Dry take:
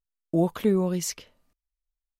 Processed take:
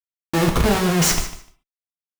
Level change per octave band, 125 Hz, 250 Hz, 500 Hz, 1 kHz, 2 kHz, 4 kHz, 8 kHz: +8.0 dB, +4.5 dB, +3.5 dB, +13.5 dB, +19.0 dB, +15.5 dB, +12.0 dB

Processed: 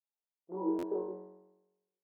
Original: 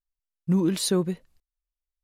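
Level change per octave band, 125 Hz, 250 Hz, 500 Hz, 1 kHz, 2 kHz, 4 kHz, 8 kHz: -27.0 dB, -12.0 dB, -7.5 dB, -2.5 dB, under -20 dB, under -30 dB, under -35 dB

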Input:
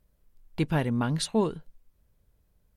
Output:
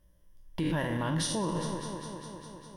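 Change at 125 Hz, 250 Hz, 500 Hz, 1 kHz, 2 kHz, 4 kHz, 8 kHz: -3.5 dB, -3.5 dB, -4.0 dB, -1.0 dB, 0.0 dB, 0.0 dB, +2.5 dB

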